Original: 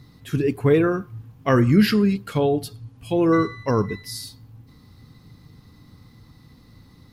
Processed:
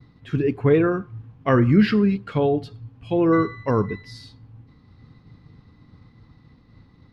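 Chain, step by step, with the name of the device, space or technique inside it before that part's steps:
hearing-loss simulation (low-pass filter 3,000 Hz 12 dB per octave; downward expander −46 dBFS)

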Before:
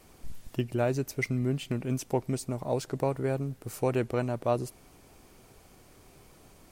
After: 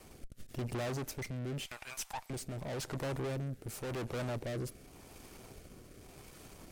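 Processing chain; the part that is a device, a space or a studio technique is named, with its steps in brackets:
0:01.60–0:02.30: Butterworth high-pass 780 Hz 36 dB per octave
overdriven rotary cabinet (tube saturation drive 43 dB, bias 0.75; rotating-speaker cabinet horn 0.9 Hz)
level +8.5 dB

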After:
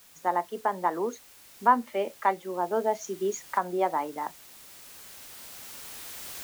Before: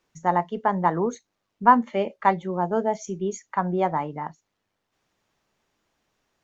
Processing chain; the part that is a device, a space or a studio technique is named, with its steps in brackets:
high-pass filter 260 Hz 24 dB per octave
cheap recorder with automatic gain (white noise bed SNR 24 dB; camcorder AGC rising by 5.4 dB per second)
level −5 dB

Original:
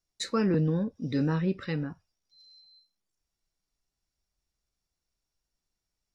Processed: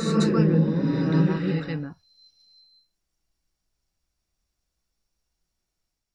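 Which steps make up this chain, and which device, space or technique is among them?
reverse reverb (reversed playback; convolution reverb RT60 2.1 s, pre-delay 114 ms, DRR −3 dB; reversed playback)

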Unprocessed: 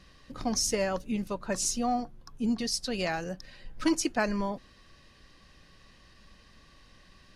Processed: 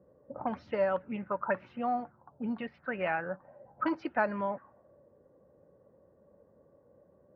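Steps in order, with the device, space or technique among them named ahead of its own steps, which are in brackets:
envelope filter bass rig (envelope-controlled low-pass 450–4,800 Hz up, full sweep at −24 dBFS; loudspeaker in its box 84–2,200 Hz, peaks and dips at 580 Hz +8 dB, 890 Hz +9 dB, 1,400 Hz +9 dB)
level −6.5 dB

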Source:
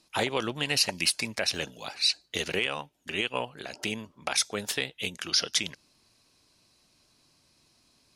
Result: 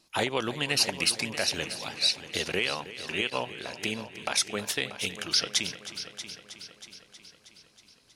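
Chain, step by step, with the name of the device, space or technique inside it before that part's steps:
multi-head tape echo (echo machine with several playback heads 318 ms, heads first and second, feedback 55%, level −15 dB; tape wow and flutter 22 cents)
0:03.30–0:03.92: downward expander −39 dBFS

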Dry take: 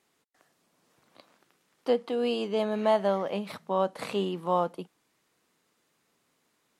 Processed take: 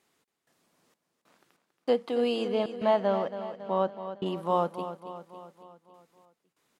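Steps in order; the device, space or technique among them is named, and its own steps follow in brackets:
0:02.48–0:04.26: high-frequency loss of the air 120 metres
trance gate with a delay (gate pattern "xx.xxx..xx..xxx" 96 BPM −60 dB; repeating echo 277 ms, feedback 56%, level −11 dB)

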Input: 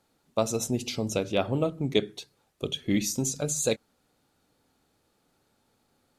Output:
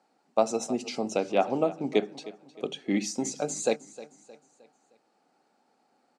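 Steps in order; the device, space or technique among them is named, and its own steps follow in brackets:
television speaker (loudspeaker in its box 200–7,700 Hz, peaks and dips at 770 Hz +10 dB, 3,500 Hz −9 dB, 6,500 Hz −5 dB)
repeating echo 310 ms, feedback 43%, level −17.5 dB

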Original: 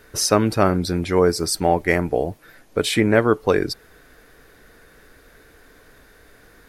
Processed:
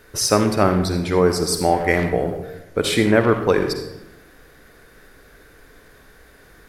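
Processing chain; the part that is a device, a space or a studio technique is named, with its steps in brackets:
saturated reverb return (on a send at −4 dB: convolution reverb RT60 0.85 s, pre-delay 45 ms + soft clipping −15.5 dBFS, distortion −13 dB)

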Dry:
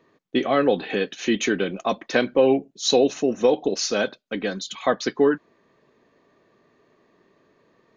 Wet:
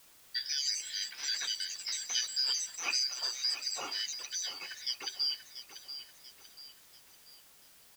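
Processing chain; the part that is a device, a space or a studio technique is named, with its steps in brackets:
high-shelf EQ 5,300 Hz −6.5 dB
split-band scrambled radio (band-splitting scrambler in four parts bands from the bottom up 4321; band-pass filter 350–3,400 Hz; white noise bed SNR 21 dB)
delay with pitch and tempo change per echo 217 ms, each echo +4 semitones, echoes 2, each echo −6 dB
repeating echo 688 ms, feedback 43%, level −11.5 dB
level −8 dB

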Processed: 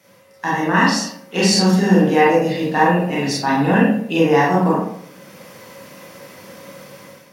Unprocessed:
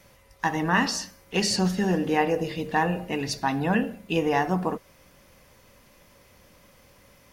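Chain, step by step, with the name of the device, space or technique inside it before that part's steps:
far laptop microphone (convolution reverb RT60 0.60 s, pre-delay 27 ms, DRR −5.5 dB; high-pass filter 130 Hz 24 dB per octave; automatic gain control gain up to 11 dB)
level −1 dB

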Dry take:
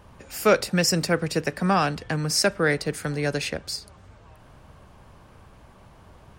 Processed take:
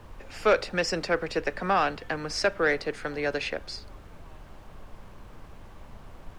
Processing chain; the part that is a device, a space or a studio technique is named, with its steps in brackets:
aircraft cabin announcement (band-pass filter 350–3,600 Hz; soft clipping −13 dBFS, distortion −18 dB; brown noise bed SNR 13 dB)

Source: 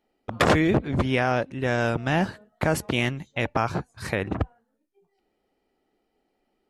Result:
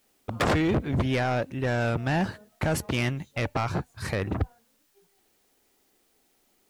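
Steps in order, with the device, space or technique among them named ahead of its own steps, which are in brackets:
open-reel tape (soft clipping −19.5 dBFS, distortion −11 dB; parametric band 91 Hz +4 dB 0.96 octaves; white noise bed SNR 40 dB)

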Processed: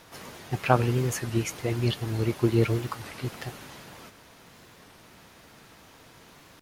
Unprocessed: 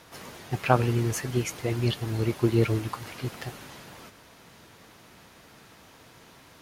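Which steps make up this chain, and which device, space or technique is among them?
warped LP (wow of a warped record 33 1/3 rpm, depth 160 cents; surface crackle 49 per second −47 dBFS; pink noise bed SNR 39 dB)

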